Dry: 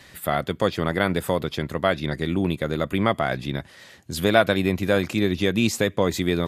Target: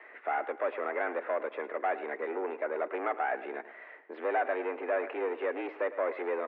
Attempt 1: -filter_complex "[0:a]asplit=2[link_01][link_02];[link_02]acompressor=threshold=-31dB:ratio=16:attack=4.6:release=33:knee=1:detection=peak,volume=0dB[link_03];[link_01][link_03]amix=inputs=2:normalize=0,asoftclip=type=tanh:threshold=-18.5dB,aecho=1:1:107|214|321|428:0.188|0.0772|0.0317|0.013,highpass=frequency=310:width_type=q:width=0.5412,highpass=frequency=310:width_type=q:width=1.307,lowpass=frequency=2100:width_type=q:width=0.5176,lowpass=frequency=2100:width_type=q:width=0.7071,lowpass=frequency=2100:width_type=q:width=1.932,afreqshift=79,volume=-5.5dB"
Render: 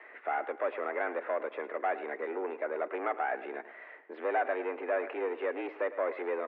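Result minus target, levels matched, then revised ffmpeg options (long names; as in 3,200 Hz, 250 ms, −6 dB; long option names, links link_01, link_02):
downward compressor: peak gain reduction +6.5 dB
-filter_complex "[0:a]asplit=2[link_01][link_02];[link_02]acompressor=threshold=-24dB:ratio=16:attack=4.6:release=33:knee=1:detection=peak,volume=0dB[link_03];[link_01][link_03]amix=inputs=2:normalize=0,asoftclip=type=tanh:threshold=-18.5dB,aecho=1:1:107|214|321|428:0.188|0.0772|0.0317|0.013,highpass=frequency=310:width_type=q:width=0.5412,highpass=frequency=310:width_type=q:width=1.307,lowpass=frequency=2100:width_type=q:width=0.5176,lowpass=frequency=2100:width_type=q:width=0.7071,lowpass=frequency=2100:width_type=q:width=1.932,afreqshift=79,volume=-5.5dB"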